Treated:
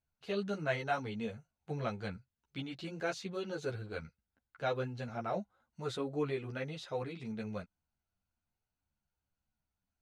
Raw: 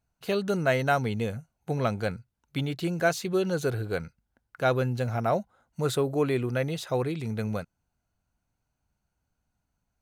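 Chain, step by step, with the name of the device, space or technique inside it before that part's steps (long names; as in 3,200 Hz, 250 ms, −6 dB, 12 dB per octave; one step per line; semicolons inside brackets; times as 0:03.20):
high-shelf EQ 3,700 Hz +9.5 dB
string-machine ensemble chorus (string-ensemble chorus; low-pass filter 4,000 Hz 12 dB per octave)
level −7.5 dB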